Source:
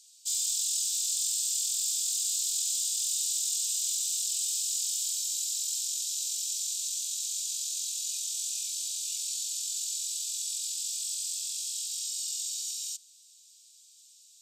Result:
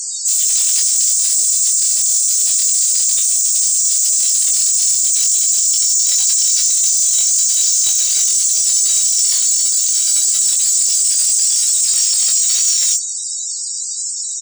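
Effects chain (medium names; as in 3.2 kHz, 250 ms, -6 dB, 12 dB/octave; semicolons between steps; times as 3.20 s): in parallel at -1 dB: compressor with a negative ratio -44 dBFS, ratio -1; on the sum: overload inside the chain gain 19.5 dB; loudest bins only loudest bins 32; sine folder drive 13 dB, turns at -20.5 dBFS; doubling 22 ms -4 dB; trim +8.5 dB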